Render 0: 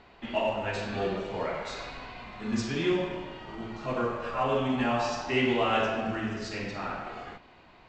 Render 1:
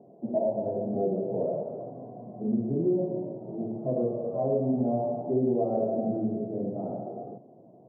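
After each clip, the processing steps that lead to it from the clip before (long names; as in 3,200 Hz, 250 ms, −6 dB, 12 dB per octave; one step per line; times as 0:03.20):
Chebyshev band-pass filter 120–670 Hz, order 4
downward compressor 2 to 1, threshold −33 dBFS, peak gain reduction 6 dB
level +7 dB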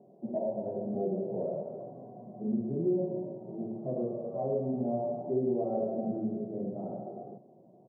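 comb filter 5.3 ms, depth 32%
level −5 dB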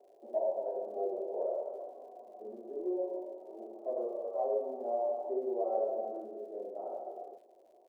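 inverse Chebyshev high-pass filter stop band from 160 Hz, stop band 50 dB
dynamic equaliser 980 Hz, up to +4 dB, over −47 dBFS, Q 1.5
surface crackle 130 per second −61 dBFS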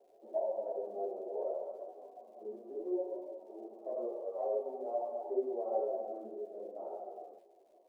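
string-ensemble chorus
level +1 dB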